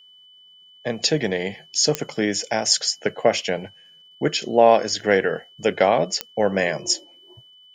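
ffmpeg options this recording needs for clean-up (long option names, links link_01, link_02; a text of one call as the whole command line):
ffmpeg -i in.wav -af "adeclick=threshold=4,bandreject=frequency=3000:width=30" out.wav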